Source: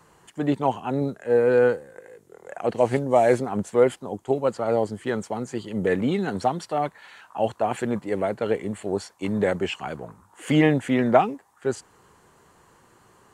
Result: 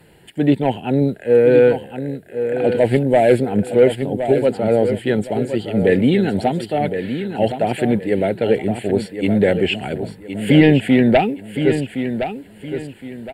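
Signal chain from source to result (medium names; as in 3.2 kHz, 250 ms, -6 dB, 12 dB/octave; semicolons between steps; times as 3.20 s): sine folder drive 6 dB, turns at -2.5 dBFS; static phaser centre 2.7 kHz, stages 4; feedback delay 1066 ms, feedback 31%, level -9 dB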